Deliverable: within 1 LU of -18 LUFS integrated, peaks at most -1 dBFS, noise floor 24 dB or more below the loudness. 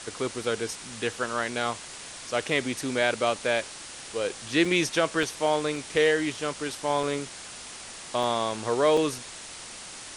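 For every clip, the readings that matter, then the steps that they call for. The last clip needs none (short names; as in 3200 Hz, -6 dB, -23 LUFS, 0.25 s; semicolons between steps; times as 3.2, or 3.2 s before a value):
dropouts 6; longest dropout 3.2 ms; noise floor -42 dBFS; noise floor target -51 dBFS; loudness -27.0 LUFS; peak -9.0 dBFS; loudness target -18.0 LUFS
-> interpolate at 4.65/5.23/5.76/7.03/8.23/8.97, 3.2 ms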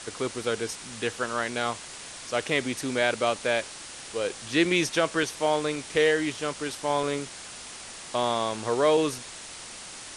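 dropouts 0; noise floor -42 dBFS; noise floor target -51 dBFS
-> noise print and reduce 9 dB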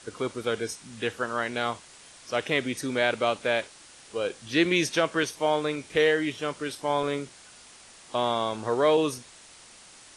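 noise floor -51 dBFS; noise floor target -52 dBFS
-> noise print and reduce 6 dB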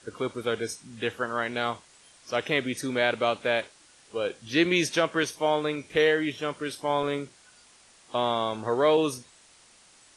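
noise floor -57 dBFS; loudness -27.5 LUFS; peak -9.5 dBFS; loudness target -18.0 LUFS
-> gain +9.5 dB; limiter -1 dBFS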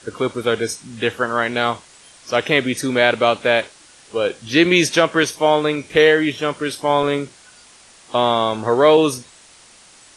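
loudness -18.0 LUFS; peak -1.0 dBFS; noise floor -47 dBFS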